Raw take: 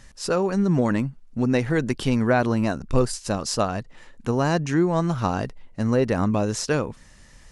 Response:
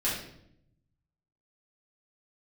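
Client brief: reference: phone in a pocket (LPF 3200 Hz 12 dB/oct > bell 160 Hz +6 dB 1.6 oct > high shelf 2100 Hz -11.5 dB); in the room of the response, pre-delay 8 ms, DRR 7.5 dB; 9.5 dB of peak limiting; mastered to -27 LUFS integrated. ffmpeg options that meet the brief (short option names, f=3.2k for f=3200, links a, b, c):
-filter_complex "[0:a]alimiter=limit=-17dB:level=0:latency=1,asplit=2[a][b];[1:a]atrim=start_sample=2205,adelay=8[c];[b][c]afir=irnorm=-1:irlink=0,volume=-16dB[d];[a][d]amix=inputs=2:normalize=0,lowpass=3.2k,equalizer=f=160:t=o:w=1.6:g=6,highshelf=f=2.1k:g=-11.5,volume=-3dB"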